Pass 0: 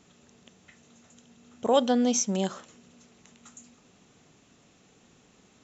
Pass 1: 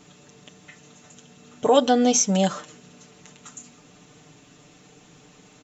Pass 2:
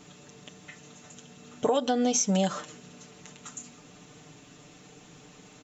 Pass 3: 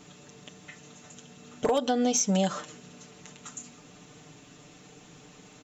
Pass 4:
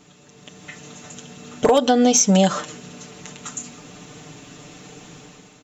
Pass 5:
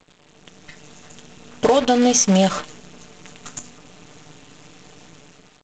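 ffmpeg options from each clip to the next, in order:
-filter_complex "[0:a]aecho=1:1:6.7:0.7,asplit=2[a][b];[b]alimiter=limit=-16.5dB:level=0:latency=1:release=105,volume=1dB[c];[a][c]amix=inputs=2:normalize=0"
-af "acompressor=threshold=-21dB:ratio=12"
-af "aeval=exprs='0.168*(abs(mod(val(0)/0.168+3,4)-2)-1)':c=same"
-af "dynaudnorm=f=160:g=7:m=10dB"
-af "acrusher=bits=5:dc=4:mix=0:aa=0.000001" -ar 16000 -c:a g722

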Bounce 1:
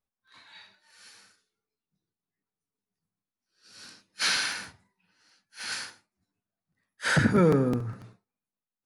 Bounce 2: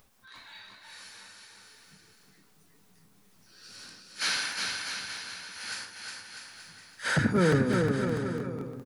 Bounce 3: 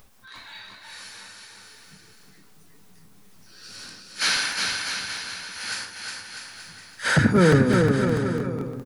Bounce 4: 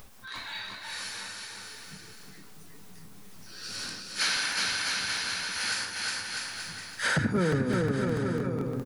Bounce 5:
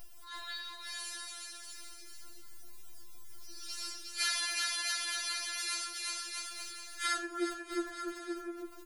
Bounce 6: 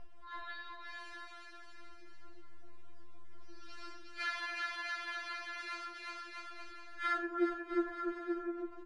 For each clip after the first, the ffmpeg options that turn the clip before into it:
-filter_complex "[0:a]acompressor=mode=upward:threshold=-38dB:ratio=2.5,asplit=2[a][b];[b]aecho=0:1:360|648|878.4|1063|1210:0.631|0.398|0.251|0.158|0.1[c];[a][c]amix=inputs=2:normalize=0,volume=-3dB"
-af "lowshelf=f=60:g=6.5,volume=6.5dB"
-af "acompressor=threshold=-32dB:ratio=3,volume=4dB"
-af "highshelf=f=5.1k:g=8.5,afftfilt=real='re*4*eq(mod(b,16),0)':imag='im*4*eq(mod(b,16),0)':win_size=2048:overlap=0.75,volume=-5.5dB"
-af "lowpass=1.7k,volume=2.5dB"

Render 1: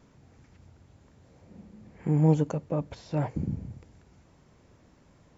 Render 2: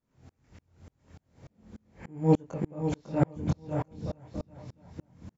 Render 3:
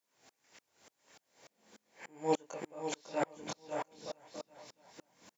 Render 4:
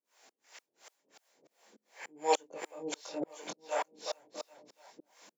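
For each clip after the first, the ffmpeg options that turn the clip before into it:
-filter_complex "[0:a]asplit=2[a][b];[b]adelay=23,volume=-5.5dB[c];[a][c]amix=inputs=2:normalize=0,asplit=2[d][e];[e]aecho=0:1:550|990|1342|1624|1849:0.631|0.398|0.251|0.158|0.1[f];[d][f]amix=inputs=2:normalize=0,aeval=exprs='val(0)*pow(10,-36*if(lt(mod(-3.4*n/s,1),2*abs(-3.4)/1000),1-mod(-3.4*n/s,1)/(2*abs(-3.4)/1000),(mod(-3.4*n/s,1)-2*abs(-3.4)/1000)/(1-2*abs(-3.4)/1000))/20)':c=same,volume=6dB"
-af "highpass=540,highshelf=f=2.5k:g=10.5,bandreject=f=1.3k:w=14,volume=-1.5dB"
-filter_complex "[0:a]acrossover=split=430[a][b];[a]aeval=exprs='val(0)*(1-1/2+1/2*cos(2*PI*2.8*n/s))':c=same[c];[b]aeval=exprs='val(0)*(1-1/2-1/2*cos(2*PI*2.8*n/s))':c=same[d];[c][d]amix=inputs=2:normalize=0,highpass=320,adynamicequalizer=threshold=0.00112:dfrequency=2100:dqfactor=0.7:tfrequency=2100:tqfactor=0.7:attack=5:release=100:ratio=0.375:range=1.5:mode=boostabove:tftype=highshelf,volume=7.5dB"

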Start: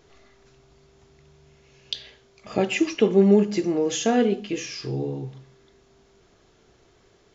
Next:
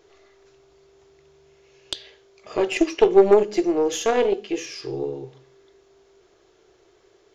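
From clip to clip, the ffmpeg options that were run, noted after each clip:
-af "aeval=exprs='0.531*(cos(1*acos(clip(val(0)/0.531,-1,1)))-cos(1*PI/2))+0.168*(cos(4*acos(clip(val(0)/0.531,-1,1)))-cos(4*PI/2))+0.0422*(cos(6*acos(clip(val(0)/0.531,-1,1)))-cos(6*PI/2))+0.00944*(cos(7*acos(clip(val(0)/0.531,-1,1)))-cos(7*PI/2))':c=same,lowshelf=f=290:t=q:w=3:g=-6.5"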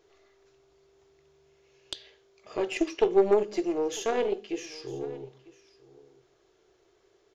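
-af "aecho=1:1:950:0.0944,volume=-7.5dB"

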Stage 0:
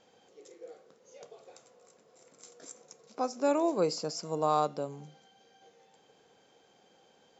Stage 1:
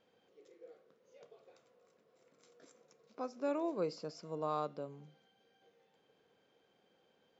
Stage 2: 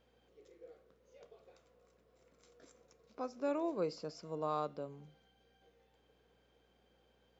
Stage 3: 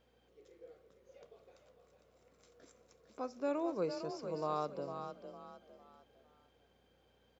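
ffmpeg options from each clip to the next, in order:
-af "lowpass=3.7k,equalizer=f=800:t=o:w=0.37:g=-6,volume=-7.5dB"
-af "aeval=exprs='val(0)+0.000158*(sin(2*PI*60*n/s)+sin(2*PI*2*60*n/s)/2+sin(2*PI*3*60*n/s)/3+sin(2*PI*4*60*n/s)/4+sin(2*PI*5*60*n/s)/5)':c=same"
-filter_complex "[0:a]asplit=5[a][b][c][d][e];[b]adelay=455,afreqshift=33,volume=-8dB[f];[c]adelay=910,afreqshift=66,volume=-17.1dB[g];[d]adelay=1365,afreqshift=99,volume=-26.2dB[h];[e]adelay=1820,afreqshift=132,volume=-35.4dB[i];[a][f][g][h][i]amix=inputs=5:normalize=0"

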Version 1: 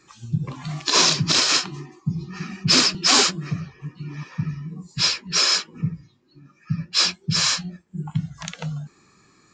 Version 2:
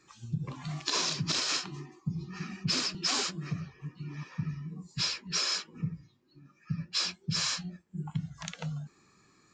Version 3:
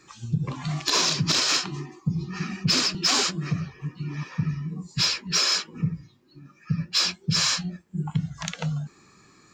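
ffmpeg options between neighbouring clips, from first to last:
-af "acompressor=threshold=-20dB:ratio=6,volume=-7dB"
-af "asoftclip=type=tanh:threshold=-18dB,volume=8.5dB"

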